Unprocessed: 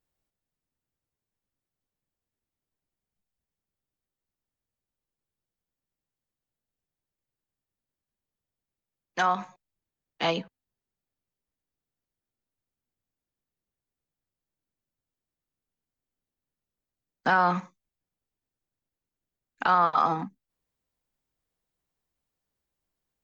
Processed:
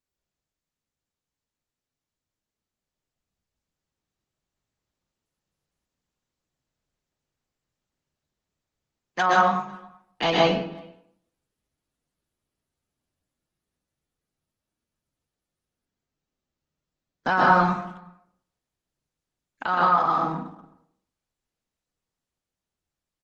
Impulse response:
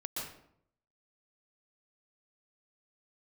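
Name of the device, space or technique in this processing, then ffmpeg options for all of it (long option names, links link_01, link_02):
speakerphone in a meeting room: -filter_complex "[1:a]atrim=start_sample=2205[link_01];[0:a][link_01]afir=irnorm=-1:irlink=0,asplit=2[link_02][link_03];[link_03]adelay=370,highpass=300,lowpass=3400,asoftclip=type=hard:threshold=-17dB,volume=-27dB[link_04];[link_02][link_04]amix=inputs=2:normalize=0,dynaudnorm=framelen=390:gausssize=21:maxgain=14.5dB,volume=-4dB" -ar 48000 -c:a libopus -b:a 16k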